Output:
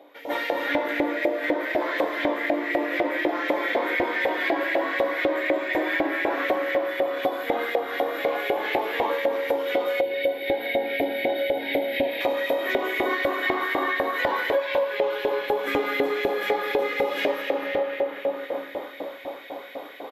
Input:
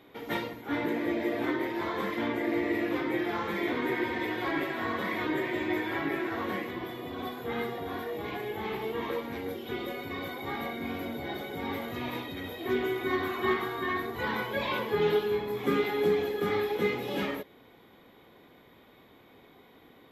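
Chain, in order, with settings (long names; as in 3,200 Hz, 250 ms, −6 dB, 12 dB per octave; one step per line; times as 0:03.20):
single-tap delay 251 ms −13 dB
comb and all-pass reverb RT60 4.1 s, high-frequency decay 0.55×, pre-delay 35 ms, DRR 1 dB
auto-filter high-pass saw up 4 Hz 710–2,200 Hz
low shelf with overshoot 770 Hz +10 dB, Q 1.5
automatic gain control gain up to 13.5 dB
parametric band 89 Hz +11 dB 0.61 octaves
notch filter 1,300 Hz, Q 20
hollow resonant body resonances 290/550 Hz, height 13 dB, ringing for 90 ms
0:10.01–0:12.21: phaser with its sweep stopped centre 2,800 Hz, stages 4
downward compressor 6 to 1, threshold −20 dBFS, peak gain reduction 15.5 dB
level −1.5 dB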